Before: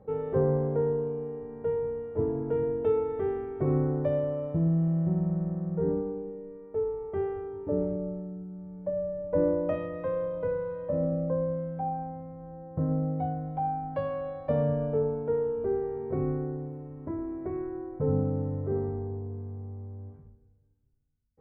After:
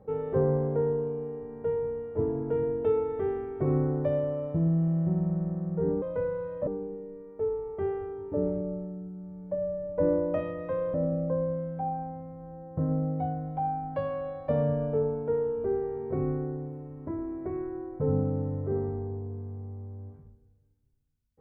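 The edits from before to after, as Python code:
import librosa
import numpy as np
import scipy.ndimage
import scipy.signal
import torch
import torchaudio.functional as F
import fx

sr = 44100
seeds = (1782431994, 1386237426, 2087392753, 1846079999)

y = fx.edit(x, sr, fx.move(start_s=10.29, length_s=0.65, to_s=6.02), tone=tone)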